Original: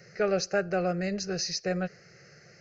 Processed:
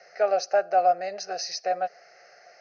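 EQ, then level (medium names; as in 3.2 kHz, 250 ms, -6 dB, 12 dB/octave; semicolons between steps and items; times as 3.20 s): resonant high-pass 710 Hz, resonance Q 6.8; dynamic bell 2 kHz, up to -4 dB, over -36 dBFS, Q 0.72; steep low-pass 6.3 kHz 72 dB/octave; 0.0 dB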